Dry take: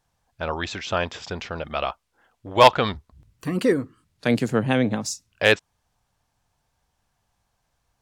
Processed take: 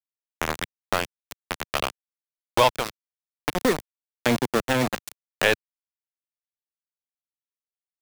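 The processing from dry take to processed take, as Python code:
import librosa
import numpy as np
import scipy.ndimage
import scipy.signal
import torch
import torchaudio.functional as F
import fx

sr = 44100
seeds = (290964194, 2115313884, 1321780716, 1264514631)

y = scipy.signal.sosfilt(scipy.signal.butter(4, 48.0, 'highpass', fs=sr, output='sos'), x)
y = np.where(np.abs(y) >= 10.0 ** (-18.0 / 20.0), y, 0.0)
y = fx.band_squash(y, sr, depth_pct=70)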